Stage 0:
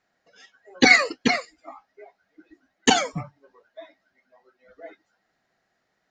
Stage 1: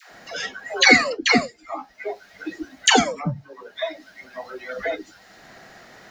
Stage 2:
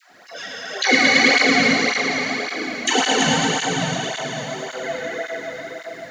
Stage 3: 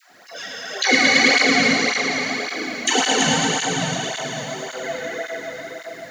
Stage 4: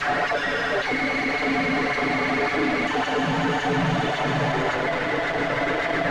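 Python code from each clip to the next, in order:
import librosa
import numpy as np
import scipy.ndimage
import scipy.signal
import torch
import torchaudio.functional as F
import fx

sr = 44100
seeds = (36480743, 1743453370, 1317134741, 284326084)

y1 = fx.dispersion(x, sr, late='lows', ms=116.0, hz=550.0)
y1 = fx.band_squash(y1, sr, depth_pct=70)
y1 = y1 * librosa.db_to_amplitude(6.5)
y2 = fx.echo_heads(y1, sr, ms=110, heads='all three', feedback_pct=46, wet_db=-6.0)
y2 = fx.rev_plate(y2, sr, seeds[0], rt60_s=4.9, hf_ratio=0.95, predelay_ms=0, drr_db=-4.5)
y2 = fx.flanger_cancel(y2, sr, hz=1.8, depth_ms=3.1)
y2 = y2 * librosa.db_to_amplitude(-3.0)
y3 = fx.high_shelf(y2, sr, hz=8100.0, db=9.0)
y3 = y3 * librosa.db_to_amplitude(-1.0)
y4 = np.sign(y3) * np.sqrt(np.mean(np.square(y3)))
y4 = scipy.signal.sosfilt(scipy.signal.butter(2, 1900.0, 'lowpass', fs=sr, output='sos'), y4)
y4 = y4 + 0.65 * np.pad(y4, (int(6.9 * sr / 1000.0), 0))[:len(y4)]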